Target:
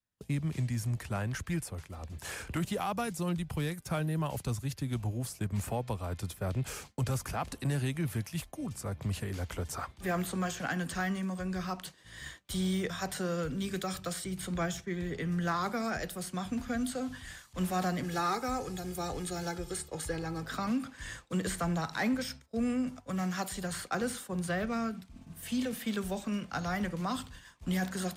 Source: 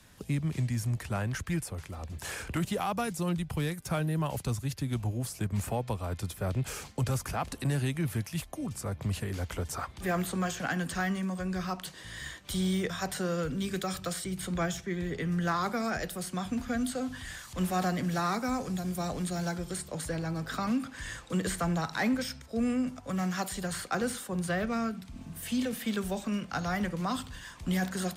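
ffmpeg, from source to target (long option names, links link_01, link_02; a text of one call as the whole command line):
ffmpeg -i in.wav -filter_complex "[0:a]agate=range=-33dB:threshold=-38dB:ratio=3:detection=peak,asettb=1/sr,asplit=3[link_01][link_02][link_03];[link_01]atrim=end=18.034[link_04];[link_02]atrim=start=18.03:end=20.43,asetpts=PTS-STARTPTS,afade=type=in:duration=0.004:curve=qsin,afade=type=out:start_time=2.396:duration=0.004:curve=qsin,aecho=1:1:2.4:0.58,atrim=end_sample=105840[link_05];[link_03]atrim=start=20.426[link_06];[link_04][link_05]acrossfade=duration=0.004:curve1=hsin:curve2=qsin[link_07];[link_07][link_06]acrossfade=duration=0.004:curve1=qsin:curve2=hsin,volume=-2dB" out.wav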